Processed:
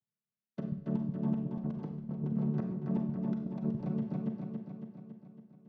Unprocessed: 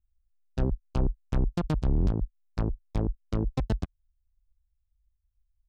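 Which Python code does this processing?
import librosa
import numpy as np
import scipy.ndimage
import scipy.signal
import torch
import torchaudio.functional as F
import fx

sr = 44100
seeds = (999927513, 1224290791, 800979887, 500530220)

p1 = fx.chord_vocoder(x, sr, chord='major triad', root=50)
p2 = p1 + fx.echo_feedback(p1, sr, ms=278, feedback_pct=59, wet_db=-6.5, dry=0)
p3 = fx.over_compress(p2, sr, threshold_db=-35.0, ratio=-0.5)
p4 = fx.high_shelf(p3, sr, hz=4800.0, db=-6.0)
y = fx.rev_schroeder(p4, sr, rt60_s=0.69, comb_ms=32, drr_db=5.0)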